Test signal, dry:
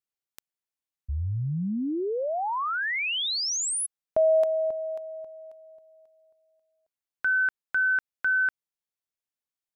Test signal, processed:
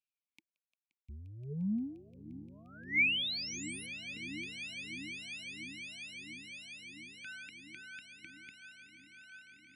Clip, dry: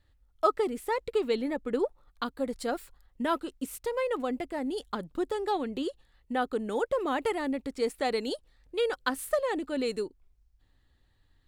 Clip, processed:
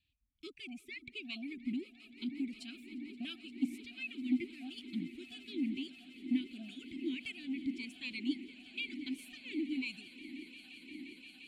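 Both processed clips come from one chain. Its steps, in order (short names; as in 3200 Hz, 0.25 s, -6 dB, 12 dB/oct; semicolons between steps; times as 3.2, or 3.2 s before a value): reverb removal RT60 1.2 s; inverse Chebyshev band-stop 450–1200 Hz, stop band 50 dB; bell 720 Hz -11.5 dB 0.73 oct; in parallel at +1 dB: limiter -30 dBFS; on the sum: soft clip -20 dBFS; on a send: swelling echo 0.175 s, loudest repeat 8, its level -18 dB; on the sum: vowel sweep a-u 1.5 Hz; gain +10.5 dB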